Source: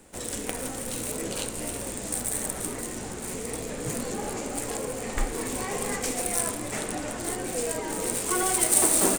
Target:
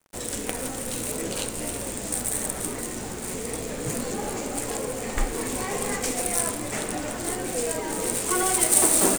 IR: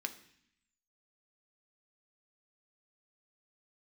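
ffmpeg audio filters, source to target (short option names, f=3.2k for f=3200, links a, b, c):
-af "acrusher=bits=6:mix=0:aa=0.5,volume=2dB"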